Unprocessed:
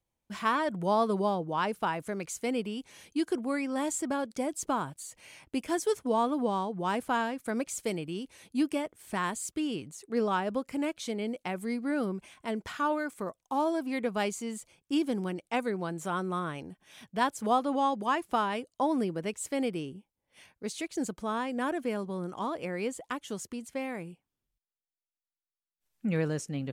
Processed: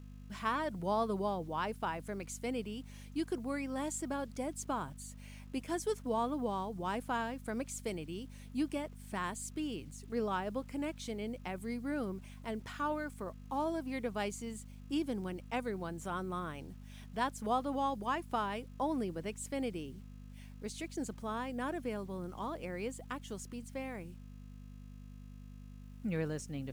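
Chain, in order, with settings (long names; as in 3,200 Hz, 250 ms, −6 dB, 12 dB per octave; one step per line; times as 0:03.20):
hum with harmonics 50 Hz, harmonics 5, −44 dBFS −4 dB per octave
bit-depth reduction 10 bits, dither none
level −6.5 dB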